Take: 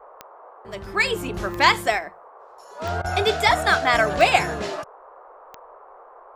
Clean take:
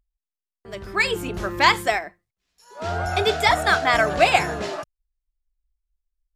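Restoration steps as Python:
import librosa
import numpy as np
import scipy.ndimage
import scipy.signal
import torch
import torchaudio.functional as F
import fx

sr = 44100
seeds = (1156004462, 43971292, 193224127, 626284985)

y = fx.fix_declick_ar(x, sr, threshold=10.0)
y = fx.fix_interpolate(y, sr, at_s=(3.02,), length_ms=22.0)
y = fx.noise_reduce(y, sr, print_start_s=5.77, print_end_s=6.27, reduce_db=30.0)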